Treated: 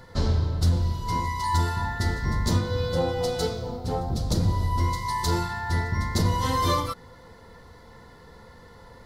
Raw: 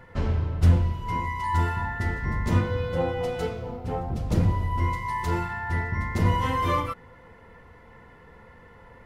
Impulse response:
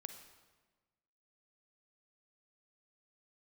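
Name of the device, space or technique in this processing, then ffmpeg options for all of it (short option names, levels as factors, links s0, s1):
over-bright horn tweeter: -af "highshelf=f=3300:t=q:w=3:g=8,alimiter=limit=0.178:level=0:latency=1:release=258,volume=1.26"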